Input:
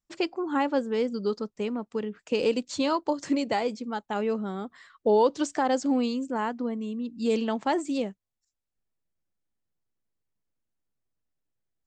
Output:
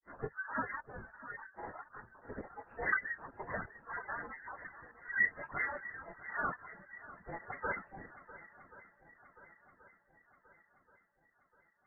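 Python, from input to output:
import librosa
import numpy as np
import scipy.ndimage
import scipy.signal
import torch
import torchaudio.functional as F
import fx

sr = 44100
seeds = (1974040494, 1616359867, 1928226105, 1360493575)

y = fx.phase_scramble(x, sr, seeds[0], window_ms=100)
y = scipy.signal.sosfilt(scipy.signal.cheby1(6, 1.0, 930.0, 'highpass', fs=sr, output='sos'), y)
y = fx.granulator(y, sr, seeds[1], grain_ms=100.0, per_s=20.0, spray_ms=19.0, spread_st=7)
y = fx.step_gate(y, sr, bpm=168, pattern='xxxxxxxxx.xxx.', floor_db=-12.0, edge_ms=4.5)
y = fx.echo_swing(y, sr, ms=1080, ratio=1.5, feedback_pct=51, wet_db=-16.5)
y = fx.freq_invert(y, sr, carrier_hz=2700)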